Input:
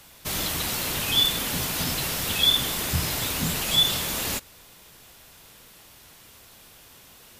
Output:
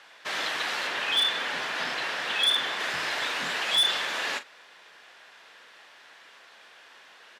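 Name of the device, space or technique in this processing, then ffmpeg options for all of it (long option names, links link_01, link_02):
megaphone: -filter_complex "[0:a]asettb=1/sr,asplit=3[link_01][link_02][link_03];[link_01]atrim=end=0.874[link_04];[link_02]atrim=start=0.87:end=2.8,asetpts=PTS-STARTPTS,afade=type=in:duration=0.004:curve=qsin,afade=type=out:start_time=1.926:duration=0.004:curve=qsin,highshelf=frequency=5000:gain=-6[link_05];[link_03]atrim=start=2.796[link_06];[link_04][link_05]acrossfade=duration=0.004:curve1=hsin:curve2=qsin[link_07];[link_07][link_06]acrossfade=duration=0.004:curve1=qsin:curve2=hsin,highpass=570,lowpass=3500,equalizer=frequency=1700:width_type=o:width=0.38:gain=7.5,asoftclip=type=hard:threshold=-20.5dB,asplit=2[link_08][link_09];[link_09]adelay=40,volume=-12.5dB[link_10];[link_08][link_10]amix=inputs=2:normalize=0,volume=2dB"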